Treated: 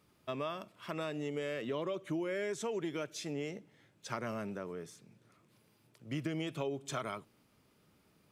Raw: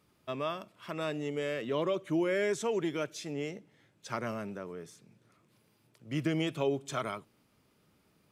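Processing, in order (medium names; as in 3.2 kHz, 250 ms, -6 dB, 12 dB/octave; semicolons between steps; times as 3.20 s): compression 4:1, threshold -34 dBFS, peak gain reduction 8 dB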